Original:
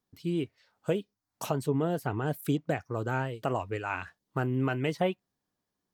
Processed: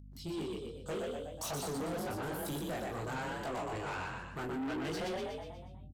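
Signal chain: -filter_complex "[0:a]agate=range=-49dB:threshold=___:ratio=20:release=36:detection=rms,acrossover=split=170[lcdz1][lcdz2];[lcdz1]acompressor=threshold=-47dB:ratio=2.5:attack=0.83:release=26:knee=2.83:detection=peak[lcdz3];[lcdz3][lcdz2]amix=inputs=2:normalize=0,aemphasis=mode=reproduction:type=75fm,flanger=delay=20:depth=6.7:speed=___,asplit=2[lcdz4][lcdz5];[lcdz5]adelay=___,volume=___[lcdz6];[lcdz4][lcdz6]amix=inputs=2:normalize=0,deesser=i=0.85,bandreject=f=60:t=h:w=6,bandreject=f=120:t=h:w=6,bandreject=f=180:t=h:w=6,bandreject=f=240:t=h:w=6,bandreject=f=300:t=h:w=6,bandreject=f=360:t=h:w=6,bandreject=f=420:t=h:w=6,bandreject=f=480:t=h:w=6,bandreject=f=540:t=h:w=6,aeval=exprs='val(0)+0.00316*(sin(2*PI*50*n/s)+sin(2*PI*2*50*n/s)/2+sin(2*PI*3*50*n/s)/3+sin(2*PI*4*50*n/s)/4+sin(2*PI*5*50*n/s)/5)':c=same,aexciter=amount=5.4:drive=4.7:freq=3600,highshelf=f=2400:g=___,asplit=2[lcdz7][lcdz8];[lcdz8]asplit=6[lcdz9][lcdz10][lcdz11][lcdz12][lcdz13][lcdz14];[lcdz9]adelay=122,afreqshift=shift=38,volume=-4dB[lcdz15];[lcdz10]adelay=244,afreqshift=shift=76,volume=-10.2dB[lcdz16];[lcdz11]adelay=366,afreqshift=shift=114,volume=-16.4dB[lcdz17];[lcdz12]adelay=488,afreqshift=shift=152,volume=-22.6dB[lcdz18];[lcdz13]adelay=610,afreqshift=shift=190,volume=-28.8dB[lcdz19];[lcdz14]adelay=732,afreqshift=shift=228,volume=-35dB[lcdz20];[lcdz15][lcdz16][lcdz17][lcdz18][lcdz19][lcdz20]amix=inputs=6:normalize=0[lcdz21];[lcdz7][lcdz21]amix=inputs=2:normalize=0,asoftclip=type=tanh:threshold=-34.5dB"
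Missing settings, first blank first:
-57dB, 1.2, 19, -8dB, 3.5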